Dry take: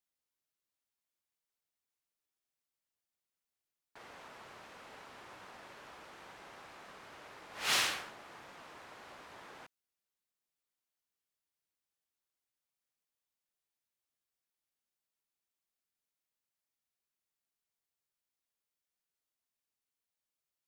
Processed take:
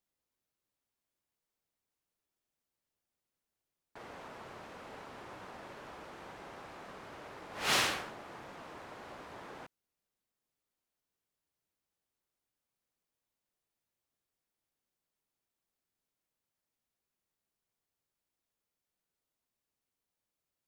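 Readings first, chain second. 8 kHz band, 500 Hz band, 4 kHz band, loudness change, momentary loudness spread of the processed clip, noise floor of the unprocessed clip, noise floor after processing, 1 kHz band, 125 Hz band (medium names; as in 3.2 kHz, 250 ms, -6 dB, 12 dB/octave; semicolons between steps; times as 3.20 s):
-0.5 dB, +6.5 dB, 0.0 dB, -6.5 dB, 19 LU, under -85 dBFS, under -85 dBFS, +4.0 dB, +8.5 dB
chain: tilt shelf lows +4.5 dB; trim +4 dB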